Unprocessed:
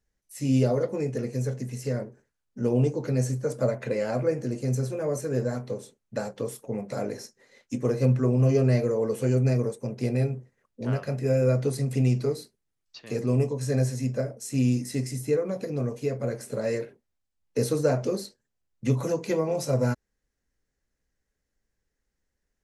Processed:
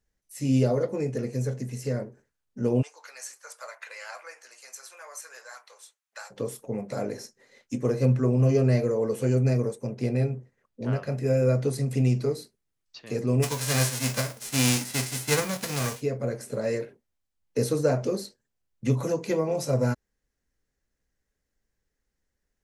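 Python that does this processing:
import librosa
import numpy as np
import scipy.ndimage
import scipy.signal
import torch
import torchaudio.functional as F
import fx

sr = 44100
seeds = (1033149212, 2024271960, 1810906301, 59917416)

y = fx.highpass(x, sr, hz=1000.0, slope=24, at=(2.81, 6.3), fade=0.02)
y = fx.high_shelf(y, sr, hz=7400.0, db=-6.5, at=(9.9, 11.12))
y = fx.envelope_flatten(y, sr, power=0.3, at=(13.42, 16.0), fade=0.02)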